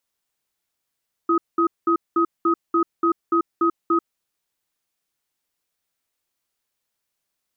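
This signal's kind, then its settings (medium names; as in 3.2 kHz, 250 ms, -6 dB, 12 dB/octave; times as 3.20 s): cadence 336 Hz, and 1.26 kHz, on 0.09 s, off 0.20 s, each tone -18 dBFS 2.87 s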